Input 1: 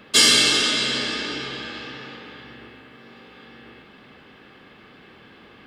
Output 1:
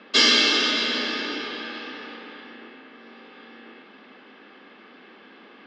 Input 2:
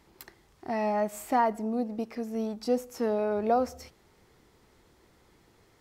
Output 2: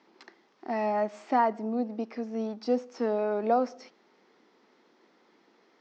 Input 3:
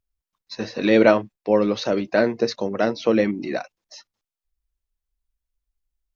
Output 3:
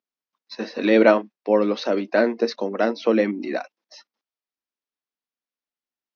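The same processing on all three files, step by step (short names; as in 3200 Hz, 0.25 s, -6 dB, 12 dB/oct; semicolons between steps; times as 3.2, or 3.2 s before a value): elliptic band-pass 230–5800 Hz, stop band 40 dB; air absorption 74 m; gain +1 dB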